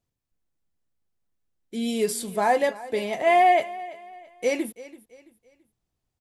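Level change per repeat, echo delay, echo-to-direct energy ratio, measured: -9.0 dB, 334 ms, -17.5 dB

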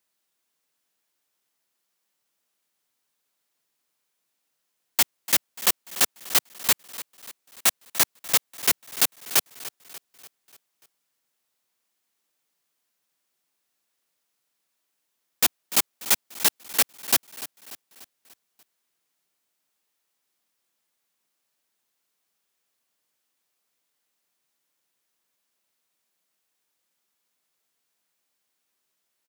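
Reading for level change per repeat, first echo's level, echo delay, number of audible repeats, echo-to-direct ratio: -6.0 dB, -16.0 dB, 293 ms, 4, -14.5 dB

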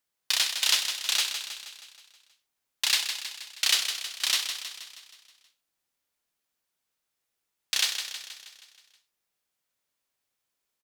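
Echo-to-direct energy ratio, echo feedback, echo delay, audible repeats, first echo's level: -6.5 dB, 56%, 159 ms, 6, -8.0 dB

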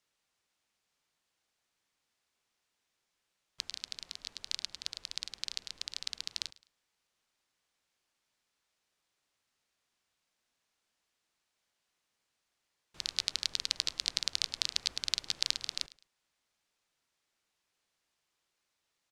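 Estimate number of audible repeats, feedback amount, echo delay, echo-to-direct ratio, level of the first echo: 2, 28%, 106 ms, -20.0 dB, -20.5 dB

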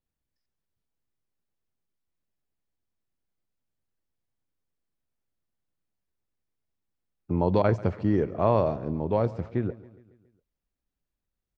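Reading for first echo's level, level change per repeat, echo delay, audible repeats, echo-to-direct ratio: -19.5 dB, -5.0 dB, 139 ms, 4, -18.0 dB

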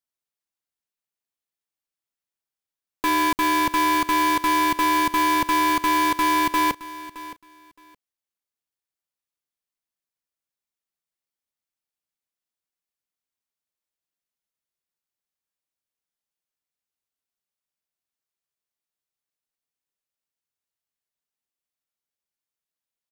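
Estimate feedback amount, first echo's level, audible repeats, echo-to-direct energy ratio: 19%, -16.5 dB, 2, -16.5 dB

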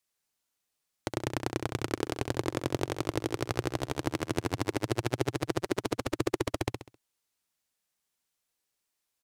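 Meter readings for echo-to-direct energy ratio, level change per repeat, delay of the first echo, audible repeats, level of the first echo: -5.5 dB, -8.5 dB, 66 ms, 4, -6.0 dB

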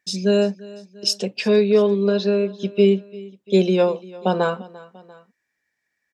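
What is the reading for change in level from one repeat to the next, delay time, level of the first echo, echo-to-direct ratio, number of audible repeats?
-5.0 dB, 345 ms, -20.5 dB, -19.5 dB, 2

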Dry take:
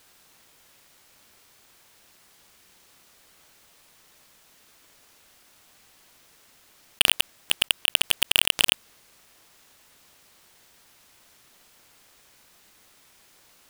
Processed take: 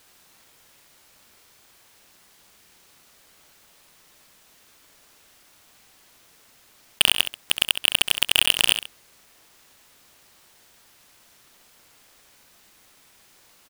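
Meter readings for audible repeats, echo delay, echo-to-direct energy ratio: 2, 67 ms, -9.5 dB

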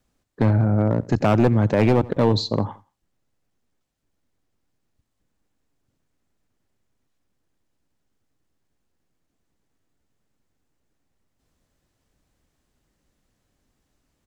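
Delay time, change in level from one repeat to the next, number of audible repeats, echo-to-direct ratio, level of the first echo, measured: 86 ms, -10.0 dB, 2, -21.0 dB, -21.5 dB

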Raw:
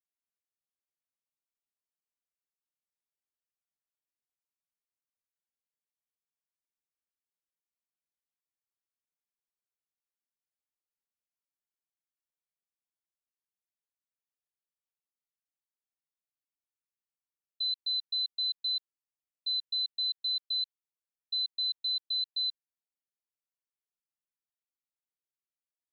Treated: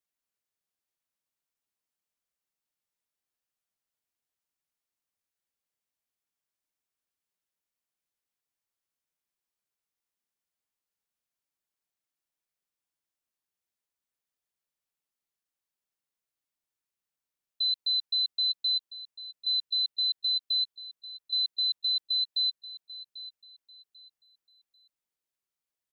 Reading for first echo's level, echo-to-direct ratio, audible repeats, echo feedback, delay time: -15.5 dB, -15.0 dB, 2, 28%, 792 ms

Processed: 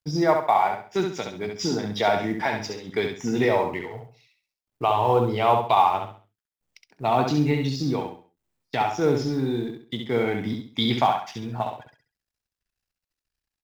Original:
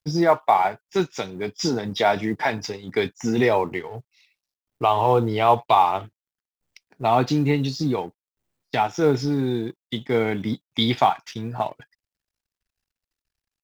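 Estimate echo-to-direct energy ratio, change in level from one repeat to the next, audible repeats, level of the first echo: -4.5 dB, -10.0 dB, 4, -5.0 dB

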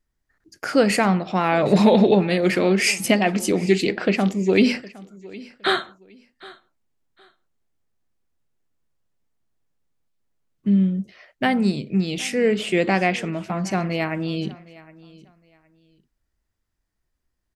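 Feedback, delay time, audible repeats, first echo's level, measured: 24%, 763 ms, 2, -21.0 dB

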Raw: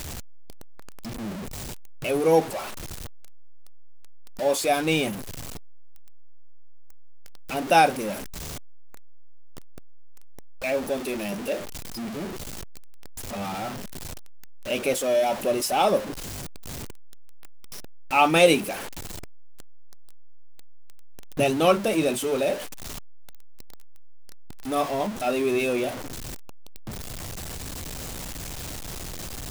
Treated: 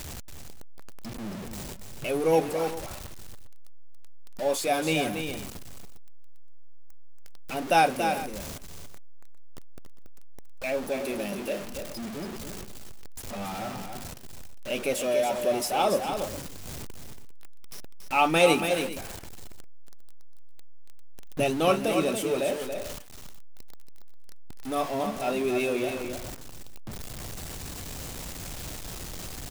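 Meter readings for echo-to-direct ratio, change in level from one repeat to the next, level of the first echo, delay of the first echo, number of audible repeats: -6.5 dB, no regular repeats, -7.0 dB, 281 ms, 2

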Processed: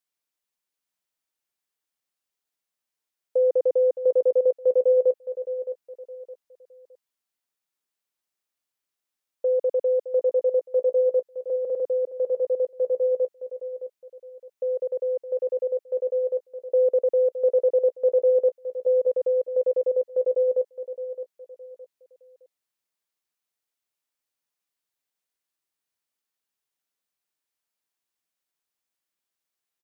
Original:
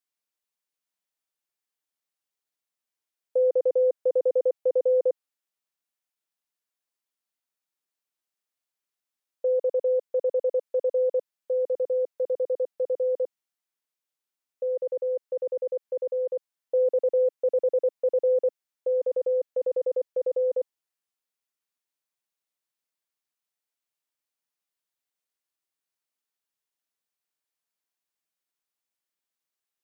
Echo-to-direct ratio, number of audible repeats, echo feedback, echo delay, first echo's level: -11.0 dB, 3, 33%, 615 ms, -11.5 dB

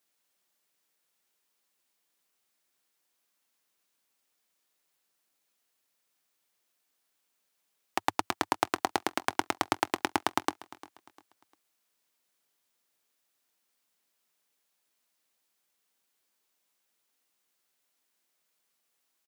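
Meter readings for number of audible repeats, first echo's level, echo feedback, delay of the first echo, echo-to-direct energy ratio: 2, -19.5 dB, 33%, 350 ms, -19.0 dB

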